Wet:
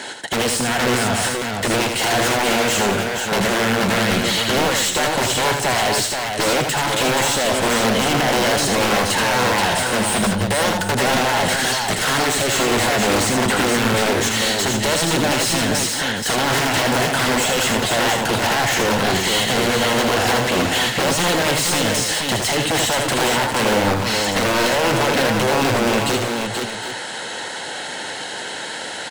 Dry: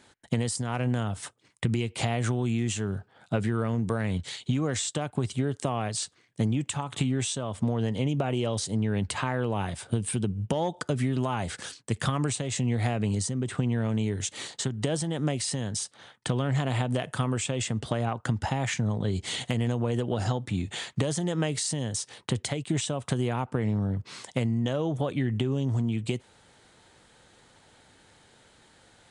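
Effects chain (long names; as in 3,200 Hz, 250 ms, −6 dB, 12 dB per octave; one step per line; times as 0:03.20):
high-pass filter 64 Hz 12 dB per octave
in parallel at −1.5 dB: brickwall limiter −20 dBFS, peak gain reduction 7.5 dB
on the sum: wrap-around overflow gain 17 dB
notch comb filter 1,200 Hz
mid-hump overdrive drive 32 dB, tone 6,700 Hz, clips at −14 dBFS
pitch vibrato 14 Hz 28 cents
on a send: multi-tap delay 80/178/478/760 ms −5/−13.5/−4.5/−13 dB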